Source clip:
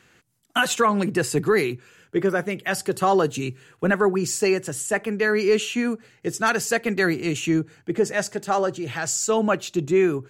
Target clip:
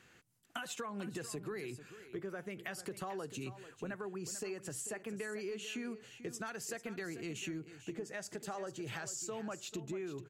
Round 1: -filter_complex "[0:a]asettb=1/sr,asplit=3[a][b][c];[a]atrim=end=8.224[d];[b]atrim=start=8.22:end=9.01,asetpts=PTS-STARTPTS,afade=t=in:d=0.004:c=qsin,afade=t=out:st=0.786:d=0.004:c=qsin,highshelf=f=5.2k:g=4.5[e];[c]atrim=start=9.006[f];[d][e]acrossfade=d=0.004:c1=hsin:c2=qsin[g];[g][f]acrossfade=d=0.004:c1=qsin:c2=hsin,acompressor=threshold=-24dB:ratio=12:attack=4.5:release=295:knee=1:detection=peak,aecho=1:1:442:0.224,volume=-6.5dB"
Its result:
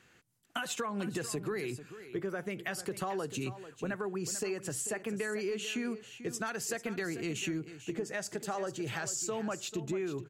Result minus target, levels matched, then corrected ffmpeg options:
compressor: peak gain reduction -6.5 dB
-filter_complex "[0:a]asettb=1/sr,asplit=3[a][b][c];[a]atrim=end=8.224[d];[b]atrim=start=8.22:end=9.01,asetpts=PTS-STARTPTS,afade=t=in:d=0.004:c=qsin,afade=t=out:st=0.786:d=0.004:c=qsin,highshelf=f=5.2k:g=4.5[e];[c]atrim=start=9.006[f];[d][e]acrossfade=d=0.004:c1=hsin:c2=qsin[g];[g][f]acrossfade=d=0.004:c1=qsin:c2=hsin,acompressor=threshold=-31dB:ratio=12:attack=4.5:release=295:knee=1:detection=peak,aecho=1:1:442:0.224,volume=-6.5dB"

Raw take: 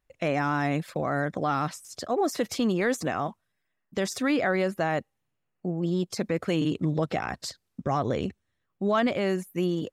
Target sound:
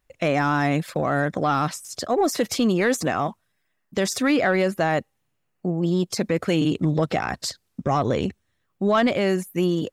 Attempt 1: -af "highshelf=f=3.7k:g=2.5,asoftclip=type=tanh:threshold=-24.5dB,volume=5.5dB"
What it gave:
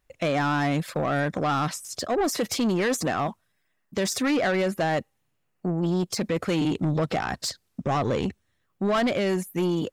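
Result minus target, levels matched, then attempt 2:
soft clip: distortion +14 dB
-af "highshelf=f=3.7k:g=2.5,asoftclip=type=tanh:threshold=-14.5dB,volume=5.5dB"

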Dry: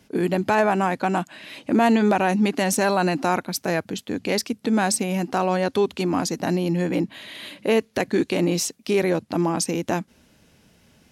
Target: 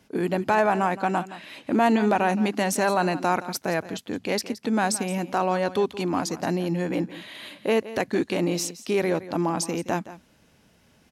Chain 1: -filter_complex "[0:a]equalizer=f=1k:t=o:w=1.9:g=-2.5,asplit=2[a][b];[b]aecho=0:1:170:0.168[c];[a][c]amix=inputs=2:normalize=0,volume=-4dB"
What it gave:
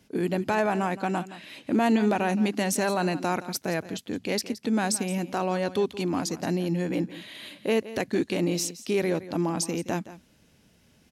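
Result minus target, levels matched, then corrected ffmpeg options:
1000 Hz band -3.0 dB
-filter_complex "[0:a]equalizer=f=1k:t=o:w=1.9:g=3.5,asplit=2[a][b];[b]aecho=0:1:170:0.168[c];[a][c]amix=inputs=2:normalize=0,volume=-4dB"

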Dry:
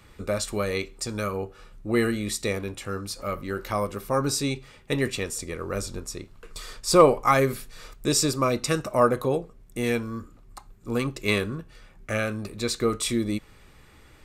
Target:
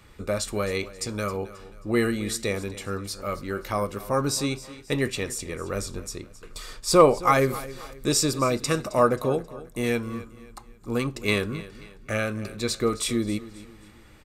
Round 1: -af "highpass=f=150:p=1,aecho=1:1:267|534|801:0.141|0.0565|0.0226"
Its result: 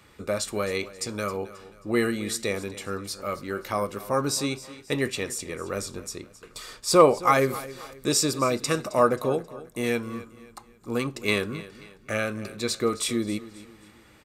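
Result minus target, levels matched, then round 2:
125 Hz band -3.0 dB
-af "aecho=1:1:267|534|801:0.141|0.0565|0.0226"

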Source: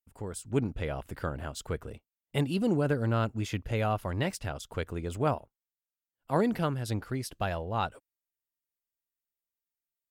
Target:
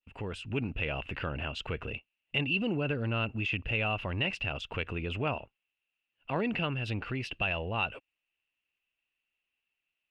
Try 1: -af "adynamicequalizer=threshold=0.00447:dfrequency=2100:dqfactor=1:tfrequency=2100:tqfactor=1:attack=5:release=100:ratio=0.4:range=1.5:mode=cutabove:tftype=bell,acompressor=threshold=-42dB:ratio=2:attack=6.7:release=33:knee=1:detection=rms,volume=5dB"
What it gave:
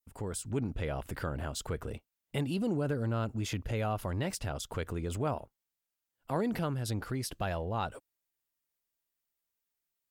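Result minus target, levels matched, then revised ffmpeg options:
2000 Hz band -8.5 dB
-af "adynamicequalizer=threshold=0.00447:dfrequency=2100:dqfactor=1:tfrequency=2100:tqfactor=1:attack=5:release=100:ratio=0.4:range=1.5:mode=cutabove:tftype=bell,lowpass=f=2.7k:t=q:w=15,acompressor=threshold=-42dB:ratio=2:attack=6.7:release=33:knee=1:detection=rms,volume=5dB"

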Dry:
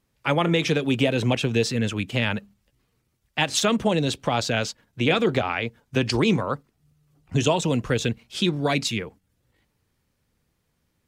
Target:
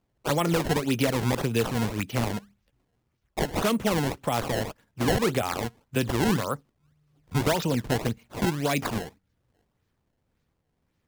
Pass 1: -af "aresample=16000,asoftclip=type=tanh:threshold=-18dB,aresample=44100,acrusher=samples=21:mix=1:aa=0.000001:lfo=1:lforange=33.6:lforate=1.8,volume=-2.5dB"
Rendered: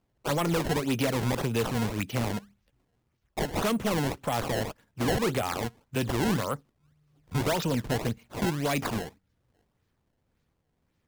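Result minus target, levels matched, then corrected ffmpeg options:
soft clip: distortion +13 dB
-af "aresample=16000,asoftclip=type=tanh:threshold=-8.5dB,aresample=44100,acrusher=samples=21:mix=1:aa=0.000001:lfo=1:lforange=33.6:lforate=1.8,volume=-2.5dB"

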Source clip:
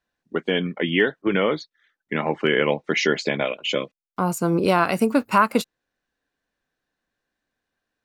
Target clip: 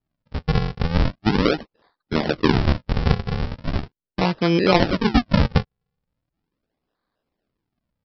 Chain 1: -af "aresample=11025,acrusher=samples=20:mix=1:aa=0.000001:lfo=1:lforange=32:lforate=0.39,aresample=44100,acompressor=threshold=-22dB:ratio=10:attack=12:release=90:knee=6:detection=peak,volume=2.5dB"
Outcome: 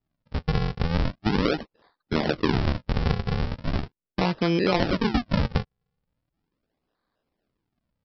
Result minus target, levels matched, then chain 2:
compressor: peak gain reduction +10 dB
-af "aresample=11025,acrusher=samples=20:mix=1:aa=0.000001:lfo=1:lforange=32:lforate=0.39,aresample=44100,volume=2.5dB"

